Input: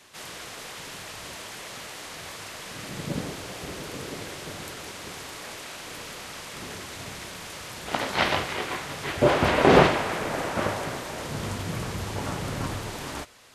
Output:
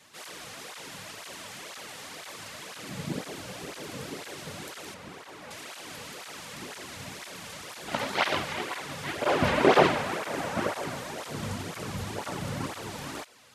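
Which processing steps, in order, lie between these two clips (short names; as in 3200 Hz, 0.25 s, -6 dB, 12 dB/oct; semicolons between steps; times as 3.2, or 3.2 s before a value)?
4.94–5.51 high shelf 3000 Hz -12 dB; tape flanging out of phase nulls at 2 Hz, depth 3.2 ms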